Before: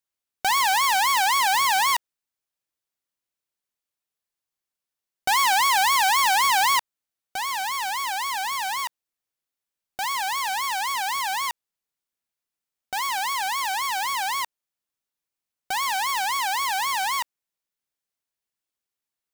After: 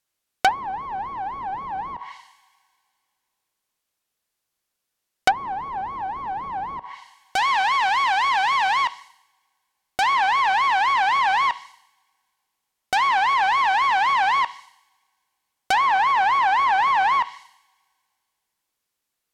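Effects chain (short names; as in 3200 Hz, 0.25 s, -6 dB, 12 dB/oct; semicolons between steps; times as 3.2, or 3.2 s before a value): two-slope reverb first 0.7 s, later 2.4 s, from -28 dB, DRR 15 dB; treble ducked by the level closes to 360 Hz, closed at -17.5 dBFS; Doppler distortion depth 0.22 ms; gain +8.5 dB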